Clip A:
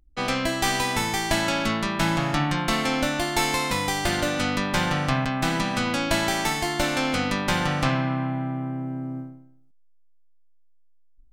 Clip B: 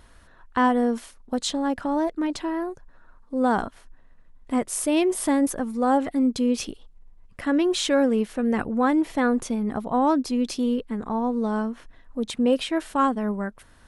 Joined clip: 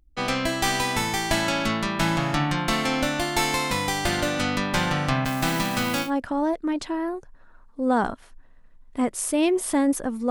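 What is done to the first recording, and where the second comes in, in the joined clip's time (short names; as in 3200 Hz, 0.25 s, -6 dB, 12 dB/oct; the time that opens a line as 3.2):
clip A
5.25–6.11 switching spikes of -26.5 dBFS
6.06 switch to clip B from 1.6 s, crossfade 0.10 s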